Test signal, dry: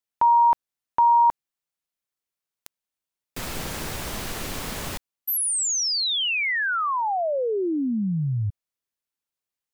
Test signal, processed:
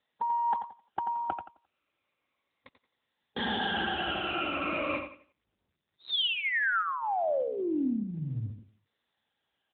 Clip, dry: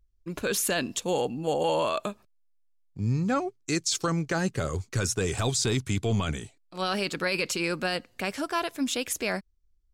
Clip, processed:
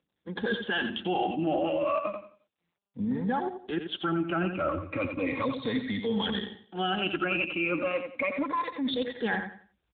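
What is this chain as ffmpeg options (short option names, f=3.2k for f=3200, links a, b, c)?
-filter_complex "[0:a]afftfilt=real='re*pow(10,22/40*sin(2*PI*(1*log(max(b,1)*sr/1024/100)/log(2)-(-0.34)*(pts-256)/sr)))':imag='im*pow(10,22/40*sin(2*PI*(1*log(max(b,1)*sr/1024/100)/log(2)-(-0.34)*(pts-256)/sr)))':win_size=1024:overlap=0.75,equalizer=f=120:t=o:w=0.45:g=-9,aecho=1:1:3.7:0.54,acrossover=split=250[a][b];[a]acompressor=threshold=-30dB:ratio=6:attack=18:release=727:knee=2.83:detection=peak[c];[c][b]amix=inputs=2:normalize=0,alimiter=limit=-16dB:level=0:latency=1:release=311,areverse,acompressor=threshold=-30dB:ratio=12:attack=33:release=26:knee=1:detection=peak,areverse,aeval=exprs='0.158*(cos(1*acos(clip(val(0)/0.158,-1,1)))-cos(1*PI/2))+0.0126*(cos(2*acos(clip(val(0)/0.158,-1,1)))-cos(2*PI/2))+0.00251*(cos(4*acos(clip(val(0)/0.158,-1,1)))-cos(4*PI/2))+0.001*(cos(5*acos(clip(val(0)/0.158,-1,1)))-cos(5*PI/2))':c=same,asplit=2[d][e];[e]aecho=0:1:87|174|261|348:0.422|0.122|0.0355|0.0103[f];[d][f]amix=inputs=2:normalize=0" -ar 8000 -c:a libopencore_amrnb -b:a 10200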